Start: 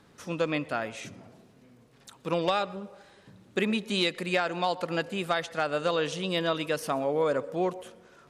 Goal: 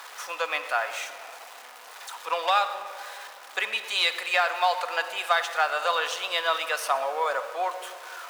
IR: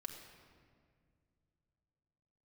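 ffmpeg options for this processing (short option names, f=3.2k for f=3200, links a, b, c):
-filter_complex "[0:a]aeval=exprs='val(0)+0.5*0.01*sgn(val(0))':c=same,highpass=f=790:w=0.5412,highpass=f=790:w=1.3066,tiltshelf=f=1.5k:g=3.5,asplit=2[a][b];[1:a]atrim=start_sample=2205[c];[b][c]afir=irnorm=-1:irlink=0,volume=5dB[d];[a][d]amix=inputs=2:normalize=0"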